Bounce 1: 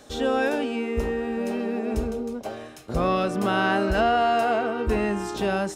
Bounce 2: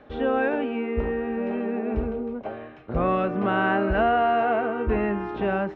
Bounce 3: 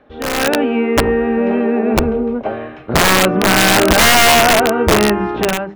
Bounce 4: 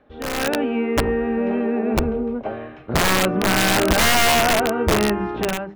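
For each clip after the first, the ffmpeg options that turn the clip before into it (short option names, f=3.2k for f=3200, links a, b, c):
-af "lowpass=f=2.5k:w=0.5412,lowpass=f=2.5k:w=1.3066"
-af "aeval=exprs='(mod(6.68*val(0)+1,2)-1)/6.68':c=same,dynaudnorm=f=180:g=5:m=13dB,bandreject=f=50:t=h:w=6,bandreject=f=100:t=h:w=6,bandreject=f=150:t=h:w=6,bandreject=f=200:t=h:w=6"
-af "lowshelf=f=160:g=4,volume=-7dB"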